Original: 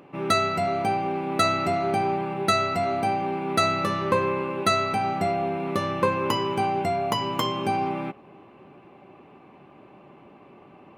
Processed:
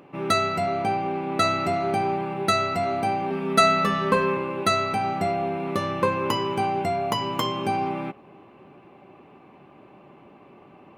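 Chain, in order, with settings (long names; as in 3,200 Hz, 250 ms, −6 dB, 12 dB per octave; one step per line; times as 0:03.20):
0:00.65–0:01.42: high-shelf EQ 9,600 Hz −8.5 dB
0:03.30–0:04.37: comb filter 4.5 ms, depth 87%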